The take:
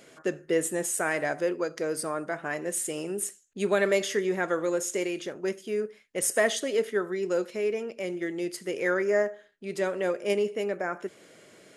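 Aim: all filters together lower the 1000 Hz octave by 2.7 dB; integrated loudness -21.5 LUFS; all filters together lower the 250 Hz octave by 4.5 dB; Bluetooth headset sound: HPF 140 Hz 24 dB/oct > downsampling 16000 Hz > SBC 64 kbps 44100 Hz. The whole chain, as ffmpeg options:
-af "highpass=f=140:w=0.5412,highpass=f=140:w=1.3066,equalizer=f=250:t=o:g=-7.5,equalizer=f=1k:t=o:g=-3.5,aresample=16000,aresample=44100,volume=10dB" -ar 44100 -c:a sbc -b:a 64k

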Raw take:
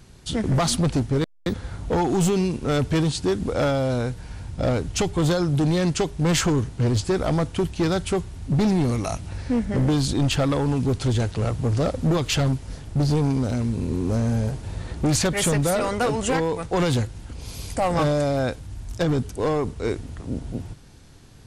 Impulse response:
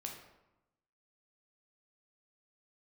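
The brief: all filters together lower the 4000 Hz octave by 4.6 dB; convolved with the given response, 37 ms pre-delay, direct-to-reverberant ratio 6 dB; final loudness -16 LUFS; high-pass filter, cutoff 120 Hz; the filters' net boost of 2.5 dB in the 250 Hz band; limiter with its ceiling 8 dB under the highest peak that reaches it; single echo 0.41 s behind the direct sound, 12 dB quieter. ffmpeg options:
-filter_complex "[0:a]highpass=120,equalizer=f=250:t=o:g=4,equalizer=f=4k:t=o:g=-6,alimiter=limit=-17.5dB:level=0:latency=1,aecho=1:1:410:0.251,asplit=2[a][b];[1:a]atrim=start_sample=2205,adelay=37[c];[b][c]afir=irnorm=-1:irlink=0,volume=-4dB[d];[a][d]amix=inputs=2:normalize=0,volume=9.5dB"

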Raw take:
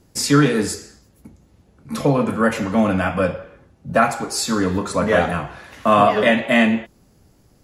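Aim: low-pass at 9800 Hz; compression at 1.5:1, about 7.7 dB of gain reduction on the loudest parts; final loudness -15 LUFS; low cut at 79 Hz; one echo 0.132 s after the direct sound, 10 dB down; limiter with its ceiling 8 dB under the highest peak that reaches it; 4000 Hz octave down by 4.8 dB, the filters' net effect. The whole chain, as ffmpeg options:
-af "highpass=79,lowpass=9.8k,equalizer=f=4k:t=o:g=-6.5,acompressor=threshold=-32dB:ratio=1.5,alimiter=limit=-18dB:level=0:latency=1,aecho=1:1:132:0.316,volume=13dB"

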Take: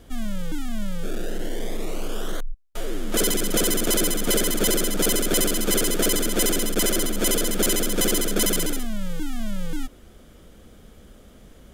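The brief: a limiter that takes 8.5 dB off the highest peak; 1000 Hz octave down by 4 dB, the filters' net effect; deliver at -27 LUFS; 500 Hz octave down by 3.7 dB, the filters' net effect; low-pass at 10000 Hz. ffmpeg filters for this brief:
-af "lowpass=10k,equalizer=f=500:t=o:g=-4,equalizer=f=1k:t=o:g=-4.5,volume=2.5dB,alimiter=limit=-14.5dB:level=0:latency=1"

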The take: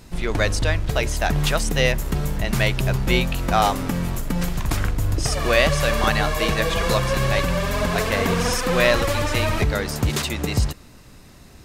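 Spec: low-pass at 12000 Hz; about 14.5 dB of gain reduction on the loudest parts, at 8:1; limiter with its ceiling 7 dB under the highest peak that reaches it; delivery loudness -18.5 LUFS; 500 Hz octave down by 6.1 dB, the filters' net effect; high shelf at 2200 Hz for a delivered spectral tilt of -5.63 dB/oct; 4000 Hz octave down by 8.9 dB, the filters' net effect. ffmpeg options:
-af "lowpass=12k,equalizer=f=500:t=o:g=-7,highshelf=f=2.2k:g=-5.5,equalizer=f=4k:t=o:g=-6.5,acompressor=threshold=-32dB:ratio=8,volume=21dB,alimiter=limit=-8dB:level=0:latency=1"

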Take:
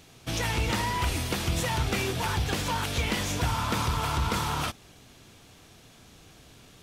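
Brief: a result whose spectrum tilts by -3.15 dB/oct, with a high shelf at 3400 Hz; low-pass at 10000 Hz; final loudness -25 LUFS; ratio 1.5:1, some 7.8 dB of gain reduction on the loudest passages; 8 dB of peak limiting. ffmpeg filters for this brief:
-af "lowpass=10k,highshelf=f=3.4k:g=6.5,acompressor=threshold=-45dB:ratio=1.5,volume=12.5dB,alimiter=limit=-16.5dB:level=0:latency=1"

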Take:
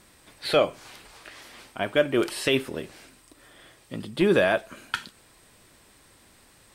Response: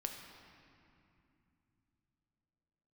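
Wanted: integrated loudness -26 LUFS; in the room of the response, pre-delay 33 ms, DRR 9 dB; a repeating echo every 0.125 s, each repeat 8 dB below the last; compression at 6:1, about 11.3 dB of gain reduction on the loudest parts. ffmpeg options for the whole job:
-filter_complex "[0:a]acompressor=threshold=-28dB:ratio=6,aecho=1:1:125|250|375|500|625:0.398|0.159|0.0637|0.0255|0.0102,asplit=2[a][b];[1:a]atrim=start_sample=2205,adelay=33[c];[b][c]afir=irnorm=-1:irlink=0,volume=-8dB[d];[a][d]amix=inputs=2:normalize=0,volume=8dB"

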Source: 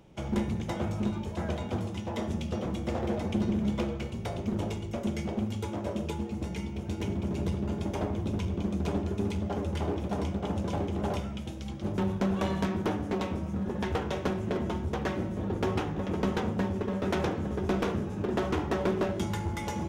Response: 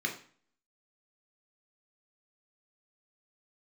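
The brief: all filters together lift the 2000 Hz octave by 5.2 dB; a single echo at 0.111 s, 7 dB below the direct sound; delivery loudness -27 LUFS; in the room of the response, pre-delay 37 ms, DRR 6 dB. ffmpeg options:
-filter_complex "[0:a]equalizer=f=2k:t=o:g=6.5,aecho=1:1:111:0.447,asplit=2[a][b];[1:a]atrim=start_sample=2205,adelay=37[c];[b][c]afir=irnorm=-1:irlink=0,volume=-12dB[d];[a][d]amix=inputs=2:normalize=0,volume=3dB"

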